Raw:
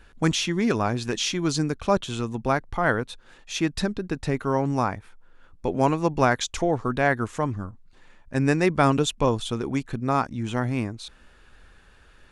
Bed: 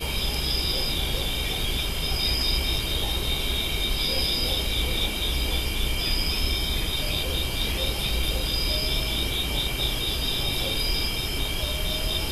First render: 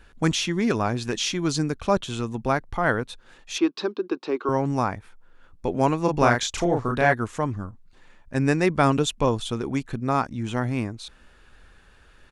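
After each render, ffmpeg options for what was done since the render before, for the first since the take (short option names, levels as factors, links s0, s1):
-filter_complex "[0:a]asettb=1/sr,asplit=3[s0][s1][s2];[s0]atrim=end=3.584[s3];[s1]atrim=start=3.58:end=4.49,asetpts=PTS-STARTPTS,afade=t=in:d=0.004:c=qsin,afade=t=out:st=0.906:d=0.004:c=qsin,highpass=f=290:w=0.5412,highpass=f=290:w=1.3066,equalizer=f=360:t=q:w=4:g=9,equalizer=f=640:t=q:w=4:g=-6,equalizer=f=1100:t=q:w=4:g=7,equalizer=f=1900:t=q:w=4:g=-10,lowpass=f=4900:w=0.5412,lowpass=f=4900:w=1.3066[s4];[s2]atrim=start=4.486[s5];[s3][s4]acrossfade=d=0.004:c1=hsin:c2=qsin[s6];[s6][s5]acrossfade=d=0.004:c1=qsin:c2=hsin,asplit=3[s7][s8][s9];[s7]afade=t=out:st=6.07:d=0.02[s10];[s8]asplit=2[s11][s12];[s12]adelay=34,volume=0.708[s13];[s11][s13]amix=inputs=2:normalize=0,afade=t=in:st=6.07:d=0.02,afade=t=out:st=7.12:d=0.02[s14];[s9]afade=t=in:st=7.12:d=0.02[s15];[s10][s14][s15]amix=inputs=3:normalize=0"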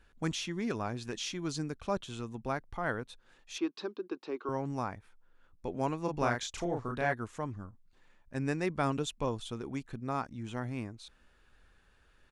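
-af "volume=0.266"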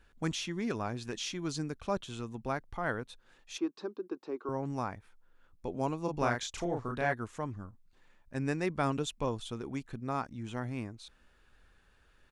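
-filter_complex "[0:a]asettb=1/sr,asplit=3[s0][s1][s2];[s0]atrim=end=3.574[s3];[s1]atrim=start=3.57:end=4.63,asetpts=PTS-STARTPTS,afade=t=in:d=0.004:c=qsin,afade=t=out:st=1.056:d=0.004:c=qsin,equalizer=f=3100:t=o:w=1.8:g=-9.5[s4];[s2]atrim=start=4.626[s5];[s3][s4]acrossfade=d=0.004:c1=hsin:c2=qsin[s6];[s6][s5]acrossfade=d=0.004:c1=qsin:c2=hsin,asettb=1/sr,asplit=3[s7][s8][s9];[s7]atrim=end=5.664[s10];[s8]atrim=start=5.66:end=6.19,asetpts=PTS-STARTPTS,afade=t=in:d=0.004:c=qsin,afade=t=out:st=0.526:d=0.004:c=qsin,equalizer=f=1800:t=o:w=0.77:g=-8[s11];[s9]atrim=start=6.186[s12];[s10][s11]acrossfade=d=0.004:c1=hsin:c2=qsin[s13];[s13][s12]acrossfade=d=0.004:c1=qsin:c2=hsin"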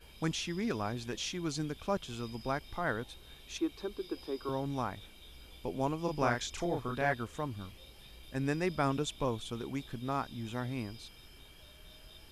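-filter_complex "[1:a]volume=0.0398[s0];[0:a][s0]amix=inputs=2:normalize=0"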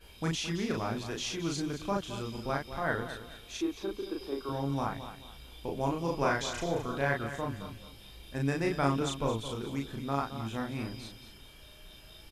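-filter_complex "[0:a]asplit=2[s0][s1];[s1]adelay=36,volume=0.794[s2];[s0][s2]amix=inputs=2:normalize=0,aecho=1:1:218|436|654:0.266|0.0798|0.0239"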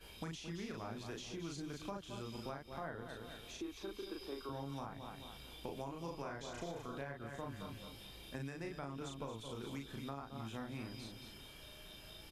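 -filter_complex "[0:a]alimiter=limit=0.075:level=0:latency=1:release=456,acrossover=split=98|910[s0][s1][s2];[s0]acompressor=threshold=0.001:ratio=4[s3];[s1]acompressor=threshold=0.00562:ratio=4[s4];[s2]acompressor=threshold=0.00251:ratio=4[s5];[s3][s4][s5]amix=inputs=3:normalize=0"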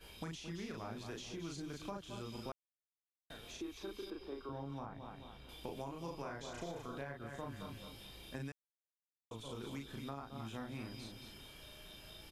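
-filter_complex "[0:a]asettb=1/sr,asplit=3[s0][s1][s2];[s0]atrim=end=4.104[s3];[s1]atrim=start=4.1:end=5.49,asetpts=PTS-STARTPTS,afade=t=in:d=0.004:c=qsin,afade=t=out:st=1.386:d=0.004:c=qsin,lowpass=f=1800:p=1[s4];[s2]atrim=start=5.486[s5];[s3][s4]acrossfade=d=0.004:c1=hsin:c2=qsin[s6];[s6][s5]acrossfade=d=0.004:c1=qsin:c2=hsin,asplit=5[s7][s8][s9][s10][s11];[s7]atrim=end=2.52,asetpts=PTS-STARTPTS,afade=t=out:st=2.516:d=0.004:c=hsin[s12];[s8]atrim=start=2.52:end=3.3,asetpts=PTS-STARTPTS,volume=0[s13];[s9]atrim=start=3.3:end=8.52,asetpts=PTS-STARTPTS,afade=t=in:d=0.004:c=hsin,afade=t=out:st=5.216:d=0.004:c=hsin[s14];[s10]atrim=start=8.52:end=9.31,asetpts=PTS-STARTPTS,volume=0[s15];[s11]atrim=start=9.31,asetpts=PTS-STARTPTS,afade=t=in:d=0.004:c=hsin[s16];[s12][s13][s14][s15][s16]concat=n=5:v=0:a=1"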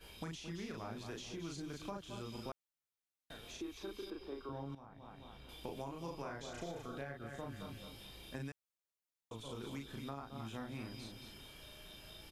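-filter_complex "[0:a]asettb=1/sr,asplit=3[s0][s1][s2];[s0]atrim=end=6.444[s3];[s1]atrim=start=6.44:end=7.93,asetpts=PTS-STARTPTS,afade=t=in:d=0.004:c=qsin,afade=t=out:st=1.486:d=0.004:c=qsin,bandreject=f=1000:w=7.4[s4];[s2]atrim=start=7.926[s5];[s3][s4]acrossfade=d=0.004:c1=hsin:c2=qsin[s6];[s6][s5]acrossfade=d=0.004:c1=qsin:c2=hsin,asplit=2[s7][s8];[s7]atrim=end=4.75,asetpts=PTS-STARTPTS,afade=t=out:st=4.746:d=0.004:c=hsin:silence=0.199526[s9];[s8]atrim=start=4.75,asetpts=PTS-STARTPTS,afade=t=in:d=0.63:silence=0.199526[s10];[s9][s10]concat=n=2:v=0:a=1"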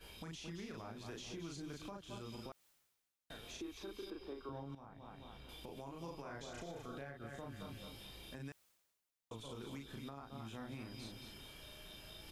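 -af "areverse,acompressor=mode=upward:threshold=0.00251:ratio=2.5,areverse,alimiter=level_in=4.73:limit=0.0631:level=0:latency=1:release=198,volume=0.211"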